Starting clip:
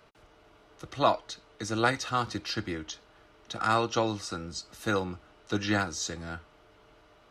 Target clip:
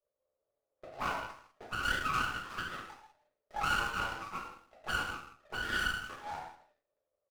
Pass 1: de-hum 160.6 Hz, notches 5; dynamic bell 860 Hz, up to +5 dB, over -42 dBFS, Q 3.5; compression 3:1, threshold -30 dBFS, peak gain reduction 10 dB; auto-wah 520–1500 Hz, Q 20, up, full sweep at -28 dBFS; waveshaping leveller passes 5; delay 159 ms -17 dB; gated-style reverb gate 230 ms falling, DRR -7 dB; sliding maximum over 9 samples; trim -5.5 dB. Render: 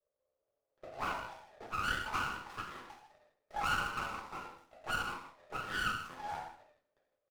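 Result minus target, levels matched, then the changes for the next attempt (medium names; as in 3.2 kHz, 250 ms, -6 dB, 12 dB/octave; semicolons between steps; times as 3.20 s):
compression: peak gain reduction +4 dB
change: compression 3:1, threshold -24 dBFS, peak gain reduction 6 dB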